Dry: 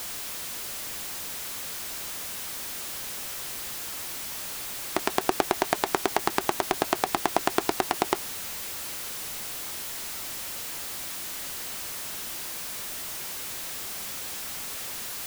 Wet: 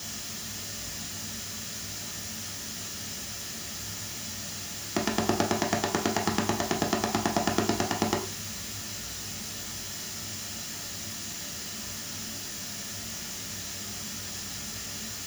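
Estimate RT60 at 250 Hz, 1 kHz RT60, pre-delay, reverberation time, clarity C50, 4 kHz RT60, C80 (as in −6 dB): 0.50 s, 0.40 s, 3 ms, 0.45 s, 9.5 dB, 0.40 s, 14.0 dB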